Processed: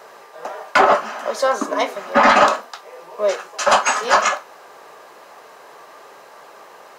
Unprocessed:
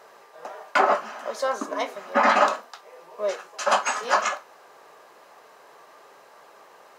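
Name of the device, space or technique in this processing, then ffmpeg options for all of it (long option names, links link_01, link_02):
one-band saturation: -filter_complex "[0:a]acrossover=split=390|2600[link_01][link_02][link_03];[link_02]asoftclip=type=tanh:threshold=-13.5dB[link_04];[link_01][link_04][link_03]amix=inputs=3:normalize=0,volume=8dB"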